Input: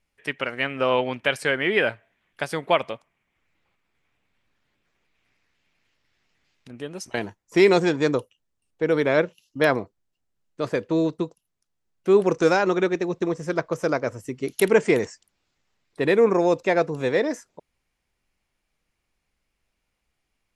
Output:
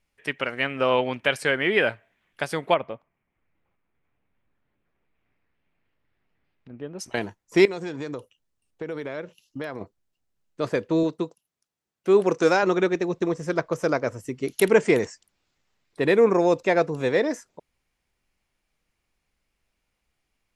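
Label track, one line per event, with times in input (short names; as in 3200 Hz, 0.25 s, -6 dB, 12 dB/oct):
2.740000	6.990000	tape spacing loss at 10 kHz 39 dB
7.650000	9.810000	compressor, threshold -29 dBFS
11.030000	12.630000	HPF 180 Hz 6 dB/oct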